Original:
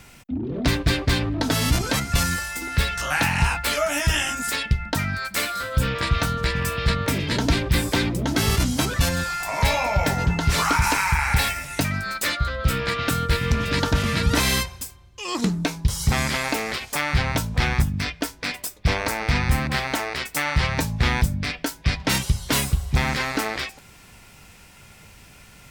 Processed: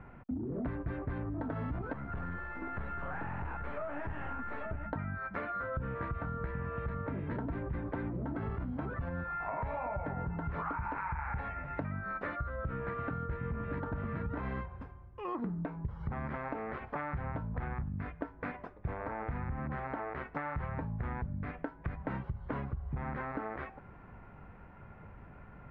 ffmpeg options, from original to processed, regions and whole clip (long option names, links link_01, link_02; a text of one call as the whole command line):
ffmpeg -i in.wav -filter_complex "[0:a]asettb=1/sr,asplit=3[link_01][link_02][link_03];[link_01]atrim=end=1.934[link_04];[link_02]atrim=start=1.93:end=4.87,asetpts=PTS-STARTPTS,afade=type=in:duration=0.004:curve=qsin,afade=type=out:start_time=2.936:duration=0.004:curve=qsin,highpass=45,aeval=exprs='(tanh(28.2*val(0)+0.55)-tanh(0.55))/28.2':channel_layout=same,aecho=1:1:837:0.398,atrim=end_sample=129654[link_05];[link_03]atrim=start=4.866[link_06];[link_04][link_05]acrossfade=duration=0.004:curve1=hsin:curve2=qsin[link_07];[link_07][link_06]acrossfade=duration=0.004:curve1=qsin:curve2=hsin,lowpass=frequency=1500:width=0.5412,lowpass=frequency=1500:width=1.3066,alimiter=limit=-15dB:level=0:latency=1:release=55,acompressor=threshold=-33dB:ratio=6,volume=-1.5dB" out.wav